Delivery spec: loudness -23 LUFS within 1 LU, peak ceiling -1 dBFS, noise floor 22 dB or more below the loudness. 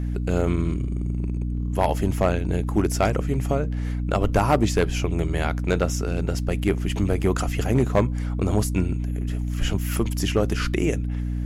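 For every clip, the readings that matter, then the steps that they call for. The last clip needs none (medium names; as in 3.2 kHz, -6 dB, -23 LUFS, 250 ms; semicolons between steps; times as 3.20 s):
clipped samples 0.3%; clipping level -11.5 dBFS; hum 60 Hz; highest harmonic 300 Hz; hum level -23 dBFS; loudness -24.0 LUFS; peak level -11.5 dBFS; loudness target -23.0 LUFS
-> clip repair -11.5 dBFS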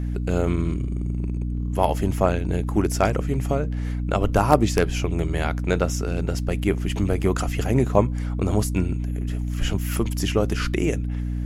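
clipped samples 0.0%; hum 60 Hz; highest harmonic 300 Hz; hum level -23 dBFS
-> hum notches 60/120/180/240/300 Hz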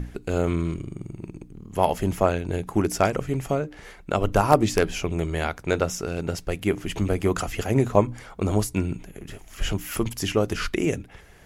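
hum not found; loudness -25.5 LUFS; peak level -1.0 dBFS; loudness target -23.0 LUFS
-> trim +2.5 dB; peak limiter -1 dBFS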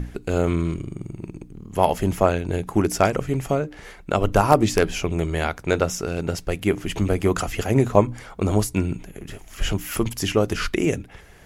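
loudness -23.0 LUFS; peak level -1.0 dBFS; noise floor -46 dBFS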